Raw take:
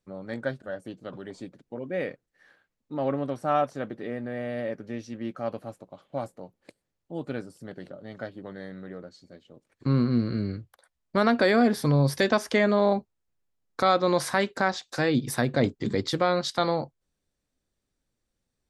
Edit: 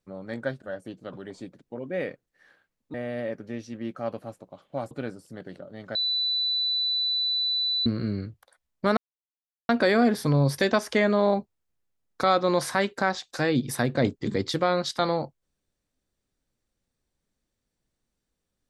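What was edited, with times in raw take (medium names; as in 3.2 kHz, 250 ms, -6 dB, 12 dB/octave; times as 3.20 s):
2.94–4.34 s: delete
6.31–7.22 s: delete
8.26–10.17 s: bleep 3.98 kHz -23 dBFS
11.28 s: insert silence 0.72 s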